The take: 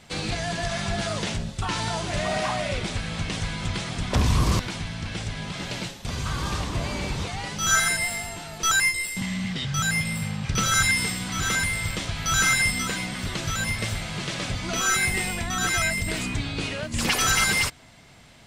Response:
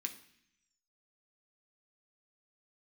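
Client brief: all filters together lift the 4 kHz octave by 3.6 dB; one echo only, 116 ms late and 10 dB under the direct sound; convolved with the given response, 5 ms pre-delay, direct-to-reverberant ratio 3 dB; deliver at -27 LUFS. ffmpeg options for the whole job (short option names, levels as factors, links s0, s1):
-filter_complex "[0:a]equalizer=f=4000:t=o:g=4.5,aecho=1:1:116:0.316,asplit=2[s0][s1];[1:a]atrim=start_sample=2205,adelay=5[s2];[s1][s2]afir=irnorm=-1:irlink=0,volume=0.841[s3];[s0][s3]amix=inputs=2:normalize=0,volume=0.562"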